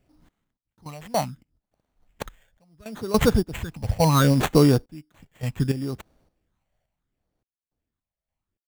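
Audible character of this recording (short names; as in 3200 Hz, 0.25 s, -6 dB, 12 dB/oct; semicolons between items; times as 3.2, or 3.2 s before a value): phasing stages 6, 0.7 Hz, lowest notch 300–4200 Hz; random-step tremolo 3.5 Hz, depth 100%; aliases and images of a low sample rate 5100 Hz, jitter 0%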